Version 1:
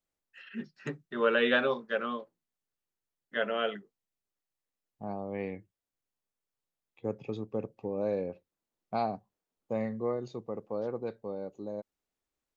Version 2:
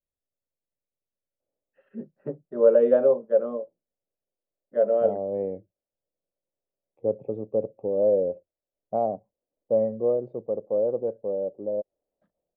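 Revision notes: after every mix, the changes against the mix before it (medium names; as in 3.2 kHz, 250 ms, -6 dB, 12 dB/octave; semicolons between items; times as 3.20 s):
first voice: entry +1.40 s; master: add resonant low-pass 570 Hz, resonance Q 4.7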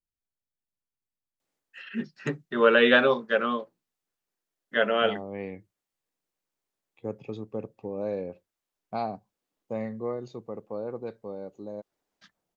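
first voice +7.0 dB; master: remove resonant low-pass 570 Hz, resonance Q 4.7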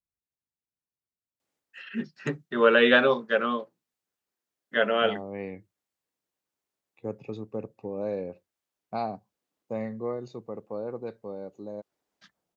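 second voice: add Butterworth band-stop 3.2 kHz, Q 7.6; master: add high-pass 53 Hz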